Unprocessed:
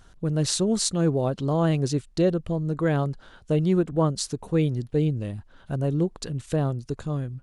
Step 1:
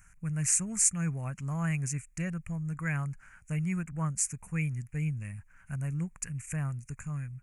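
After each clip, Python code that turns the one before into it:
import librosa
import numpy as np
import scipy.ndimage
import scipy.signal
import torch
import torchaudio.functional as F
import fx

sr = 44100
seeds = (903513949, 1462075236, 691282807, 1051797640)

y = fx.curve_eq(x, sr, hz=(170.0, 360.0, 520.0, 2400.0, 3600.0, 6800.0), db=(0, -20, -17, 13, -29, 11))
y = y * 10.0 ** (-6.5 / 20.0)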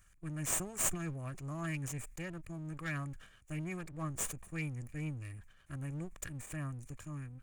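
y = fx.lower_of_two(x, sr, delay_ms=1.7)
y = fx.sustainer(y, sr, db_per_s=96.0)
y = y * 10.0 ** (-6.0 / 20.0)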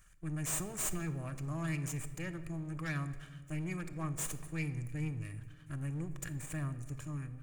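y = 10.0 ** (-33.5 / 20.0) * np.tanh(x / 10.0 ** (-33.5 / 20.0))
y = fx.room_shoebox(y, sr, seeds[0], volume_m3=1300.0, walls='mixed', distance_m=0.54)
y = y * 10.0 ** (2.0 / 20.0)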